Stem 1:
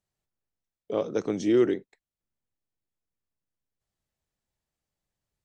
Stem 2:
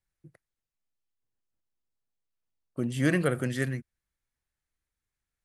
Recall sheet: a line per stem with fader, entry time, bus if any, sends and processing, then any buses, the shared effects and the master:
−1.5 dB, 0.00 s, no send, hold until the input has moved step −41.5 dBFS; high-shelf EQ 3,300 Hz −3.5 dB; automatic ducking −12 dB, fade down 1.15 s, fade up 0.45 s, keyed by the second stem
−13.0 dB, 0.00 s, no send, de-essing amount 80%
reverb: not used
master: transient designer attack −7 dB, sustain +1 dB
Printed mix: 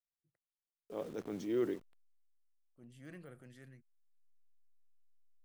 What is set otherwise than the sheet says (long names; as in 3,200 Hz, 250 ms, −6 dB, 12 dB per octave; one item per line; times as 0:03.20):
stem 1 −1.5 dB → −10.5 dB
stem 2 −13.0 dB → −25.0 dB